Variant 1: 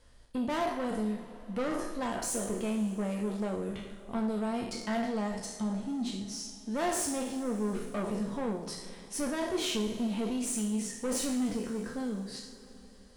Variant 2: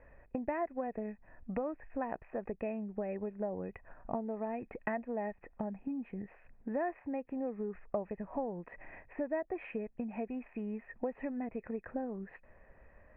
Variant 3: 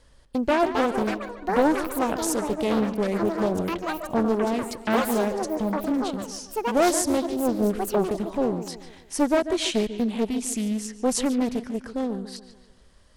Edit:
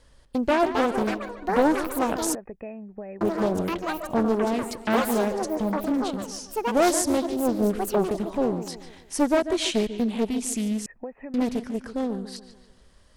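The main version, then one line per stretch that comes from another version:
3
0:02.35–0:03.21: punch in from 2
0:10.86–0:11.34: punch in from 2
not used: 1

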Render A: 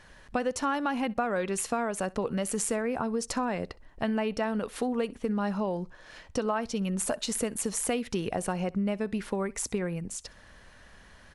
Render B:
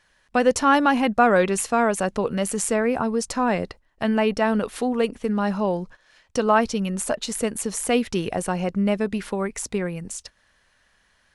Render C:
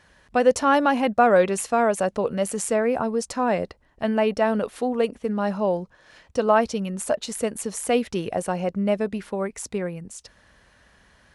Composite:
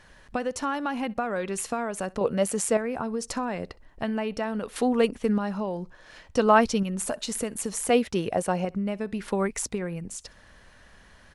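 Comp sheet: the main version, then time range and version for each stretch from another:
A
0:02.21–0:02.77: punch in from C
0:04.76–0:05.38: punch in from B
0:06.37–0:06.83: punch in from B
0:07.90–0:08.65: punch in from C
0:09.28–0:09.72: punch in from B

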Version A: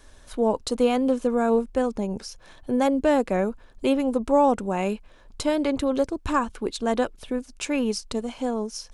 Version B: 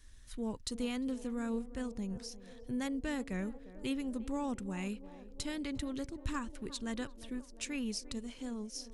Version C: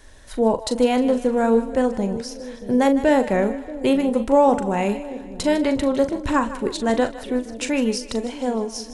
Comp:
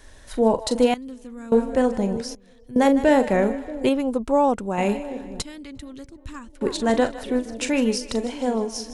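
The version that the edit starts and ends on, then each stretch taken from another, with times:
C
0:00.94–0:01.52: punch in from B
0:02.35–0:02.76: punch in from B
0:03.89–0:04.78: punch in from A
0:05.42–0:06.61: punch in from B

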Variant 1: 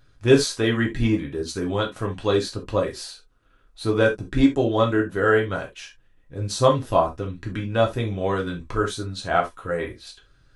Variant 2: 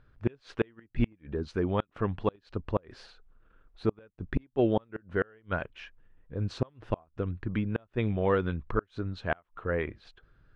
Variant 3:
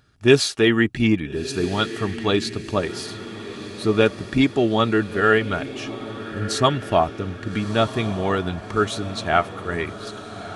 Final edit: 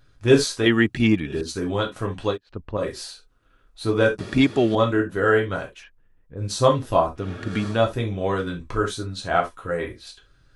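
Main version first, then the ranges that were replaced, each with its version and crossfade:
1
0:00.66–0:01.41: punch in from 3
0:02.33–0:02.79: punch in from 2, crossfade 0.10 s
0:04.19–0:04.75: punch in from 3
0:05.80–0:06.40: punch in from 2, crossfade 0.10 s
0:07.23–0:07.74: punch in from 3, crossfade 0.16 s

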